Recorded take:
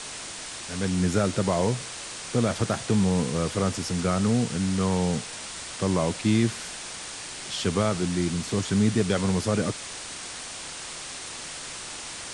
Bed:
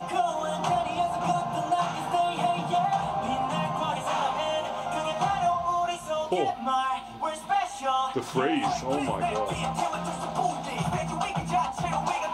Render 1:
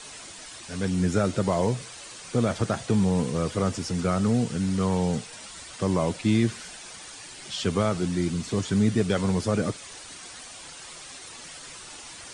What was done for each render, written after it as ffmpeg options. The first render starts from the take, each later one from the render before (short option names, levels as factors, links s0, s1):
-af "afftdn=nr=9:nf=-38"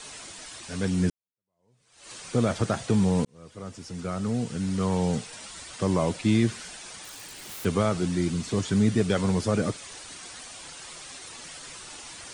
-filter_complex "[0:a]asettb=1/sr,asplit=3[s0][s1][s2];[s0]atrim=end=7.044[s3];[s1]atrim=start=7.04:end=7.65,asetpts=PTS-STARTPTS,afade=t=in:d=0.004:c=qsin,afade=t=out:st=0.606:d=0.004:c=qsin,aeval=exprs='(mod(53.1*val(0)+1,2)-1)/53.1':c=same[s4];[s2]atrim=start=7.646[s5];[s3][s4]acrossfade=d=0.004:c1=hsin:c2=qsin[s6];[s6][s5]acrossfade=d=0.004:c1=qsin:c2=hsin,asplit=3[s7][s8][s9];[s7]atrim=end=1.1,asetpts=PTS-STARTPTS,afade=t=out:st=1.096:d=0.004:c=hsin[s10];[s8]atrim=start=1.1:end=3.25,asetpts=PTS-STARTPTS,afade=t=in:d=1.01:c=exp,afade=t=out:st=2.146:d=0.004:c=hsin[s11];[s9]atrim=start=3.25,asetpts=PTS-STARTPTS,afade=t=in:d=1.87[s12];[s10][s11][s12]concat=n=3:v=0:a=1"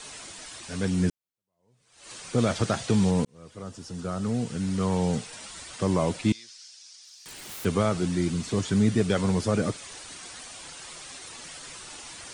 -filter_complex "[0:a]asettb=1/sr,asplit=3[s0][s1][s2];[s0]atrim=end=2.384[s3];[s1]atrim=start=2.38:end=3.11,asetpts=PTS-STARTPTS,afade=t=in:d=0.004:c=qsin,afade=t=out:st=0.726:d=0.004:c=qsin,equalizer=f=4300:w=0.62:g=4.5[s4];[s2]atrim=start=3.106[s5];[s3][s4]acrossfade=d=0.004:c1=hsin:c2=qsin[s6];[s6][s5]acrossfade=d=0.004:c1=qsin:c2=hsin,asettb=1/sr,asplit=3[s7][s8][s9];[s7]atrim=end=3.634[s10];[s8]atrim=start=3.63:end=4.22,asetpts=PTS-STARTPTS,afade=t=in:d=0.004:c=qsin,afade=t=out:st=0.586:d=0.004:c=qsin,equalizer=f=2200:w=4.4:g=-9[s11];[s9]atrim=start=4.216[s12];[s10][s11]acrossfade=d=0.004:c1=hsin:c2=qsin[s13];[s13][s12]acrossfade=d=0.004:c1=qsin:c2=hsin,asettb=1/sr,asplit=3[s14][s15][s16];[s14]atrim=end=6.324[s17];[s15]atrim=start=6.32:end=7.26,asetpts=PTS-STARTPTS,afade=t=in:d=0.004:c=qsin,afade=t=out:st=0.936:d=0.004:c=qsin,bandpass=f=5200:t=q:w=3.4[s18];[s16]atrim=start=7.256[s19];[s17][s18]acrossfade=d=0.004:c1=hsin:c2=qsin[s20];[s20][s19]acrossfade=d=0.004:c1=qsin:c2=hsin"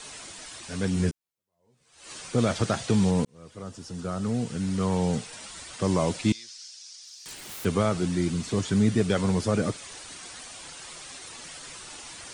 -filter_complex "[0:a]asettb=1/sr,asplit=3[s0][s1][s2];[s0]atrim=end=0.954[s3];[s1]atrim=start=0.95:end=2.27,asetpts=PTS-STARTPTS,afade=t=in:d=0.004:c=qsin,afade=t=out:st=1.316:d=0.004:c=qsin,asplit=2[s4][s5];[s5]adelay=13,volume=0.562[s6];[s4][s6]amix=inputs=2:normalize=0,atrim=end_sample=58212[s7];[s2]atrim=start=2.266[s8];[s3][s7]acrossfade=d=0.004:c1=hsin:c2=qsin[s9];[s9][s8]acrossfade=d=0.004:c1=qsin:c2=hsin,asettb=1/sr,asplit=3[s10][s11][s12];[s10]atrim=end=5.844[s13];[s11]atrim=start=5.84:end=7.35,asetpts=PTS-STARTPTS,afade=t=in:d=0.004:c=qsin,afade=t=out:st=1.506:d=0.004:c=qsin,equalizer=f=5900:w=0.77:g=4[s14];[s12]atrim=start=7.346[s15];[s13][s14]acrossfade=d=0.004:c1=hsin:c2=qsin[s16];[s16][s15]acrossfade=d=0.004:c1=qsin:c2=hsin"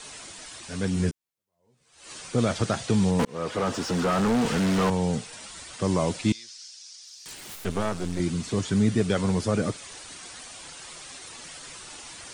-filter_complex "[0:a]asettb=1/sr,asplit=3[s0][s1][s2];[s0]atrim=end=3.194[s3];[s1]atrim=start=3.19:end=4.9,asetpts=PTS-STARTPTS,afade=t=in:d=0.004:c=qsin,afade=t=out:st=1.706:d=0.004:c=qsin,asplit=2[s4][s5];[s5]highpass=f=720:p=1,volume=39.8,asoftclip=type=tanh:threshold=0.178[s6];[s4][s6]amix=inputs=2:normalize=0,lowpass=f=1700:p=1,volume=0.501[s7];[s2]atrim=start=4.896[s8];[s3][s7]acrossfade=d=0.004:c1=hsin:c2=qsin[s9];[s9][s8]acrossfade=d=0.004:c1=qsin:c2=hsin,asettb=1/sr,asplit=3[s10][s11][s12];[s10]atrim=end=7.554[s13];[s11]atrim=start=7.55:end=8.2,asetpts=PTS-STARTPTS,afade=t=in:d=0.004:c=qsin,afade=t=out:st=0.646:d=0.004:c=qsin,aeval=exprs='if(lt(val(0),0),0.251*val(0),val(0))':c=same[s14];[s12]atrim=start=8.196[s15];[s13][s14]acrossfade=d=0.004:c1=hsin:c2=qsin[s16];[s16][s15]acrossfade=d=0.004:c1=qsin:c2=hsin"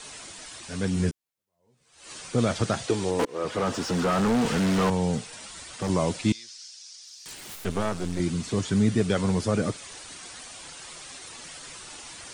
-filter_complex "[0:a]asettb=1/sr,asplit=3[s0][s1][s2];[s0]atrim=end=2.864[s3];[s1]atrim=start=2.86:end=3.45,asetpts=PTS-STARTPTS,afade=t=in:d=0.004:c=qsin,afade=t=out:st=0.586:d=0.004:c=qsin,lowshelf=f=260:t=q:w=3:g=-6.5[s4];[s2]atrim=start=3.446[s5];[s3][s4]acrossfade=d=0.004:c1=hsin:c2=qsin[s6];[s6][s5]acrossfade=d=0.004:c1=qsin:c2=hsin,asettb=1/sr,asplit=3[s7][s8][s9];[s7]atrim=end=5.174[s10];[s8]atrim=start=5.17:end=5.9,asetpts=PTS-STARTPTS,afade=t=in:d=0.004:c=qsin,afade=t=out:st=0.726:d=0.004:c=qsin,volume=15,asoftclip=hard,volume=0.0668[s11];[s9]atrim=start=5.896[s12];[s10][s11]acrossfade=d=0.004:c1=hsin:c2=qsin[s13];[s13][s12]acrossfade=d=0.004:c1=qsin:c2=hsin"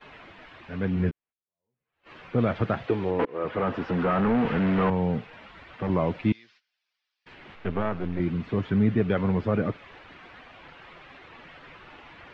-af "lowpass=f=2600:w=0.5412,lowpass=f=2600:w=1.3066,agate=range=0.126:threshold=0.00224:ratio=16:detection=peak"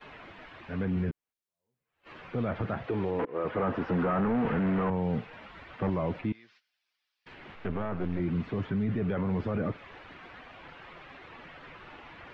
-filter_complex "[0:a]acrossover=split=2200[s0][s1];[s0]alimiter=limit=0.075:level=0:latency=1:release=12[s2];[s1]acompressor=threshold=0.00158:ratio=6[s3];[s2][s3]amix=inputs=2:normalize=0"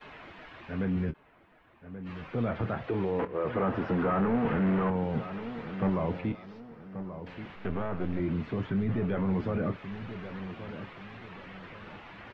-filter_complex "[0:a]asplit=2[s0][s1];[s1]adelay=26,volume=0.266[s2];[s0][s2]amix=inputs=2:normalize=0,asplit=2[s3][s4];[s4]adelay=1132,lowpass=f=1500:p=1,volume=0.282,asplit=2[s5][s6];[s6]adelay=1132,lowpass=f=1500:p=1,volume=0.37,asplit=2[s7][s8];[s8]adelay=1132,lowpass=f=1500:p=1,volume=0.37,asplit=2[s9][s10];[s10]adelay=1132,lowpass=f=1500:p=1,volume=0.37[s11];[s3][s5][s7][s9][s11]amix=inputs=5:normalize=0"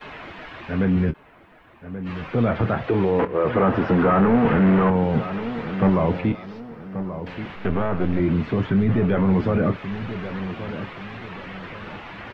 -af "volume=3.16"